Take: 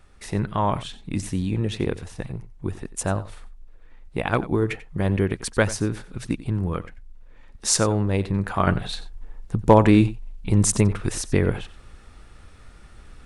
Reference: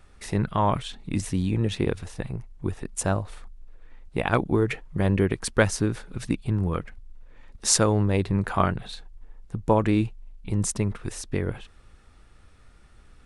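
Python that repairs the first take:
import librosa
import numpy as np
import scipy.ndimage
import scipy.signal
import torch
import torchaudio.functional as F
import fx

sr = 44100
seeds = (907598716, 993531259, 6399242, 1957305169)

y = fx.fix_declip(x, sr, threshold_db=-3.5)
y = fx.fix_echo_inverse(y, sr, delay_ms=91, level_db=-16.5)
y = fx.fix_level(y, sr, at_s=8.67, step_db=-7.0)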